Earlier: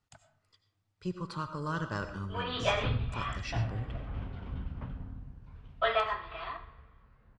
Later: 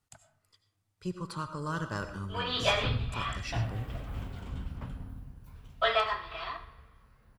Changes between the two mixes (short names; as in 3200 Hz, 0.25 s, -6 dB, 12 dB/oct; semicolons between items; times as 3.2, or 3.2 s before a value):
background: remove air absorption 230 m; master: remove LPF 5800 Hz 12 dB/oct